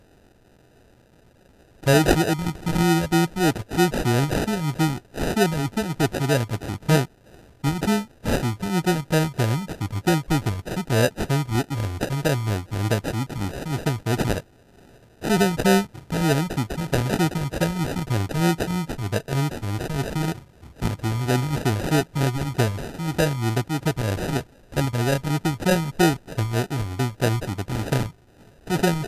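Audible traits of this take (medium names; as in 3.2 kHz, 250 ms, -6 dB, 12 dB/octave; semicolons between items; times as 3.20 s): a quantiser's noise floor 10-bit, dither triangular; phasing stages 2, 3.2 Hz, lowest notch 360–3000 Hz; aliases and images of a low sample rate 1.1 kHz, jitter 0%; MP2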